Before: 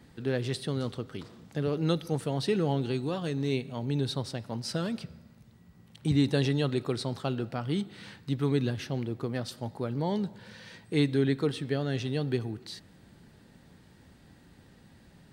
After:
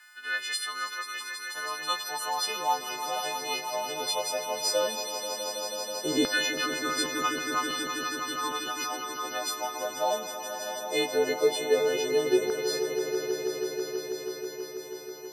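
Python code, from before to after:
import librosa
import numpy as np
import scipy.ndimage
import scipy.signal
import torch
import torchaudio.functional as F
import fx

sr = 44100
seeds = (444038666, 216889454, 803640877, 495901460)

y = fx.freq_snap(x, sr, grid_st=3)
y = fx.filter_lfo_highpass(y, sr, shape='saw_down', hz=0.16, low_hz=390.0, high_hz=1500.0, q=4.6)
y = fx.echo_swell(y, sr, ms=162, loudest=5, wet_db=-10.5)
y = F.gain(torch.from_numpy(y), -1.5).numpy()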